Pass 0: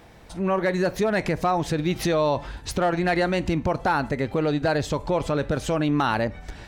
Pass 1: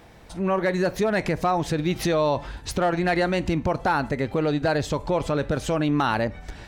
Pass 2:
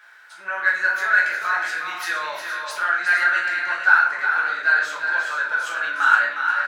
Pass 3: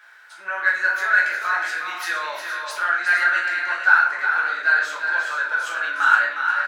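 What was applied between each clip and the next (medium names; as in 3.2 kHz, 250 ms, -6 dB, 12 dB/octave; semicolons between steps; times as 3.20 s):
no audible change
resonant high-pass 1.5 kHz, resonance Q 10; on a send: multi-tap echo 362/435/464 ms -7/-17/-9 dB; on the sum: simulated room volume 110 m³, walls mixed, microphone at 1.4 m; trim -7 dB
high-pass 220 Hz 12 dB/octave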